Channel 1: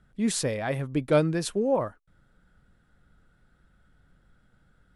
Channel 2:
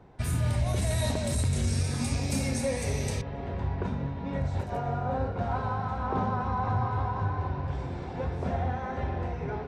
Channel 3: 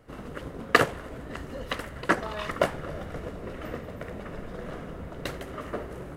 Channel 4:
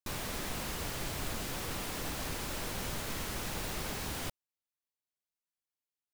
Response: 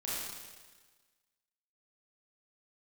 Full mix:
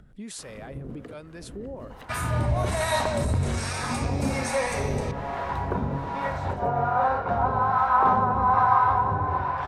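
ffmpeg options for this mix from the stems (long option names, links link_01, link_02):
-filter_complex "[0:a]acompressor=threshold=-56dB:ratio=1.5,volume=-2dB[link_01];[1:a]equalizer=frequency=1100:width=0.71:gain=14.5,bandreject=frequency=50:width_type=h:width=6,bandreject=frequency=100:width_type=h:width=6,adelay=1900,volume=2.5dB[link_02];[2:a]acrossover=split=400[link_03][link_04];[link_04]acompressor=threshold=-49dB:ratio=4[link_05];[link_03][link_05]amix=inputs=2:normalize=0,adelay=300,volume=-4.5dB[link_06];[3:a]lowpass=4300,adelay=2350,volume=-8dB[link_07];[link_01][link_06]amix=inputs=2:normalize=0,acontrast=71,alimiter=level_in=3dB:limit=-24dB:level=0:latency=1:release=99,volume=-3dB,volume=0dB[link_08];[link_02][link_07][link_08]amix=inputs=3:normalize=0,acompressor=mode=upward:threshold=-46dB:ratio=2.5,acrossover=split=640[link_09][link_10];[link_09]aeval=exprs='val(0)*(1-0.7/2+0.7/2*cos(2*PI*1.2*n/s))':channel_layout=same[link_11];[link_10]aeval=exprs='val(0)*(1-0.7/2-0.7/2*cos(2*PI*1.2*n/s))':channel_layout=same[link_12];[link_11][link_12]amix=inputs=2:normalize=0"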